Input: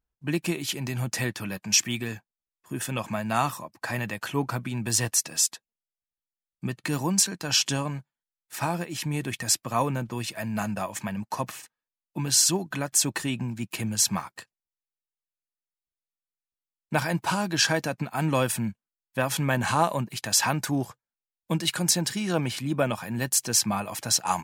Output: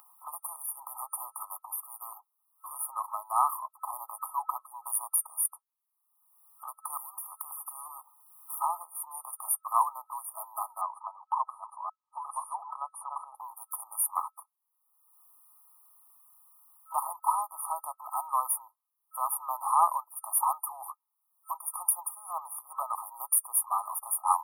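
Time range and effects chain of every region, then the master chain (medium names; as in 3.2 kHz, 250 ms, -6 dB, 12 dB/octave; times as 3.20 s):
6.97–8.61 s: compression 10:1, threshold -34 dBFS + spectrum-flattening compressor 4:1
10.81–13.35 s: chunks repeated in reverse 543 ms, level -5 dB + Gaussian low-pass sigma 1.6 samples
whole clip: steep high-pass 870 Hz 48 dB/octave; FFT band-reject 1.3–9.2 kHz; upward compressor, threshold -37 dBFS; trim +4 dB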